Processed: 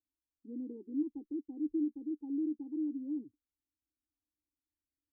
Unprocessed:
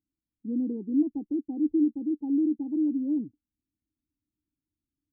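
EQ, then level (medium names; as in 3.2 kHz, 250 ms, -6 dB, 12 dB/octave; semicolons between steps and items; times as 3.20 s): static phaser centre 660 Hz, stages 6; -8.0 dB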